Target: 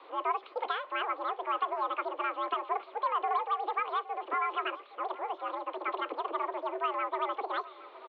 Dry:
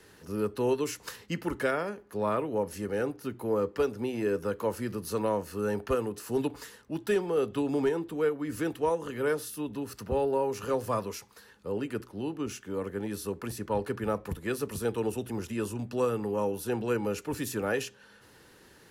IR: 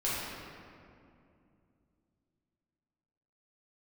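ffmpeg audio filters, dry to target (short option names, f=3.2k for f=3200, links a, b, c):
-filter_complex "[0:a]aeval=exprs='val(0)+0.5*0.00562*sgn(val(0))':c=same,asetrate=103194,aresample=44100,bandreject=f=500:w=15,highpass=f=280:t=q:w=0.5412,highpass=f=280:t=q:w=1.307,lowpass=f=3.5k:t=q:w=0.5176,lowpass=f=3.5k:t=q:w=0.7071,lowpass=f=3.5k:t=q:w=1.932,afreqshift=100,aemphasis=mode=reproduction:type=riaa,asplit=2[a][b];[b]adelay=816.3,volume=-17dB,highshelf=f=4k:g=-18.4[c];[a][c]amix=inputs=2:normalize=0,volume=-2.5dB"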